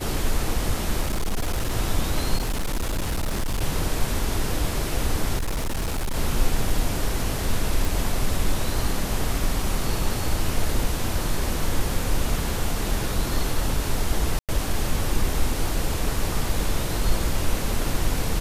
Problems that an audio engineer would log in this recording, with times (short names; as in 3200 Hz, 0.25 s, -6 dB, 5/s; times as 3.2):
1.01–1.76 clipped -20 dBFS
2.37–3.61 clipped -21 dBFS
5.36–6.16 clipped -22 dBFS
6.7 gap 2.3 ms
7.85 pop
14.39–14.49 gap 97 ms